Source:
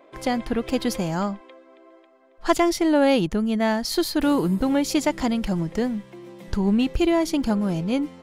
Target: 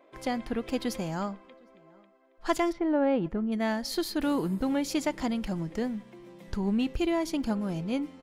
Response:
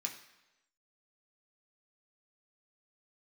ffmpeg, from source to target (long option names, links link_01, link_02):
-filter_complex "[0:a]asplit=3[link_01][link_02][link_03];[link_01]afade=type=out:start_time=2.71:duration=0.02[link_04];[link_02]lowpass=1500,afade=type=in:start_time=2.71:duration=0.02,afade=type=out:start_time=3.51:duration=0.02[link_05];[link_03]afade=type=in:start_time=3.51:duration=0.02[link_06];[link_04][link_05][link_06]amix=inputs=3:normalize=0,asplit=2[link_07][link_08];[link_08]adelay=758,volume=-28dB,highshelf=frequency=4000:gain=-17.1[link_09];[link_07][link_09]amix=inputs=2:normalize=0,asplit=2[link_10][link_11];[1:a]atrim=start_sample=2205,lowpass=4200[link_12];[link_11][link_12]afir=irnorm=-1:irlink=0,volume=-15dB[link_13];[link_10][link_13]amix=inputs=2:normalize=0,volume=-7.5dB"